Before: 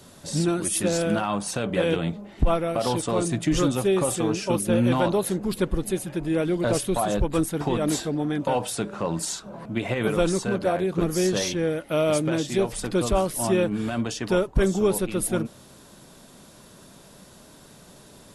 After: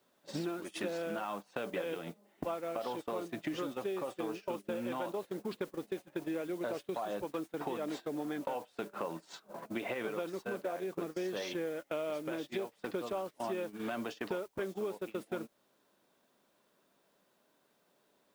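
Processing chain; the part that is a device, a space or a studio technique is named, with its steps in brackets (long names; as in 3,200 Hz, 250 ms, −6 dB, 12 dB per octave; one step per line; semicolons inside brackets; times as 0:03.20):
baby monitor (band-pass filter 320–3,100 Hz; downward compressor 10 to 1, threshold −34 dBFS, peak gain reduction 16 dB; white noise bed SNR 21 dB; noise gate −40 dBFS, range −20 dB)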